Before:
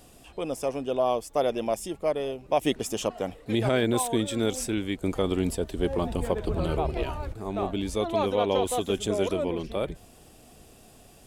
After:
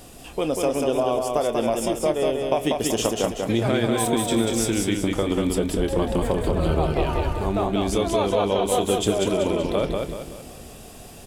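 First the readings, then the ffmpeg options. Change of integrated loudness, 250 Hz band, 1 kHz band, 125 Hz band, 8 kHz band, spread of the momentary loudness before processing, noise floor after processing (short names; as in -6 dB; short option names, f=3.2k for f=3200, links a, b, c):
+5.0 dB, +5.5 dB, +4.5 dB, +5.5 dB, +7.0 dB, 7 LU, -42 dBFS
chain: -filter_complex "[0:a]acompressor=threshold=-28dB:ratio=6,asplit=2[a][b];[b]adelay=26,volume=-12dB[c];[a][c]amix=inputs=2:normalize=0,asplit=2[d][e];[e]aecho=0:1:190|380|570|760|950:0.668|0.281|0.118|0.0495|0.0208[f];[d][f]amix=inputs=2:normalize=0,volume=8.5dB"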